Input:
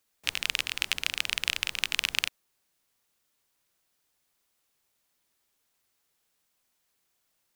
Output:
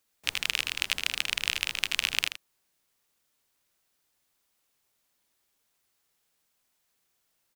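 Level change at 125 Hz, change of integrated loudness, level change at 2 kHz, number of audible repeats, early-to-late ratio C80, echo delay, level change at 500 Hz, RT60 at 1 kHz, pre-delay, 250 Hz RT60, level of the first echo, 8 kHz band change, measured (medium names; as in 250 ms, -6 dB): +0.5 dB, +0.5 dB, +0.5 dB, 1, no reverb, 79 ms, +0.5 dB, no reverb, no reverb, no reverb, -10.0 dB, +0.5 dB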